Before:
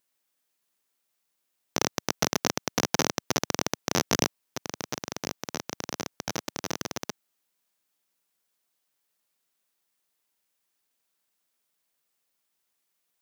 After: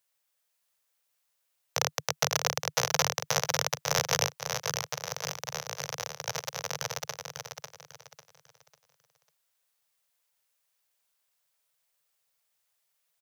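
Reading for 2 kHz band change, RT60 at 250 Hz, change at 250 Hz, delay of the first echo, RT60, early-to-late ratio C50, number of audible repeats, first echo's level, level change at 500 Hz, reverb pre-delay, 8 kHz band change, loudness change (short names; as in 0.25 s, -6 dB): +1.0 dB, none, -14.5 dB, 0.547 s, none, none, 3, -6.0 dB, -1.5 dB, none, +1.0 dB, 0.0 dB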